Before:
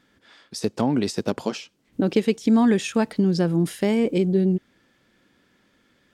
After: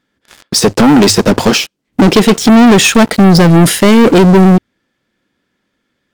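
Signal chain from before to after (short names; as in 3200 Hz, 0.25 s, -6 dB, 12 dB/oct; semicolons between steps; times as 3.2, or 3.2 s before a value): notches 50/100 Hz; sample leveller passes 5; gain +6 dB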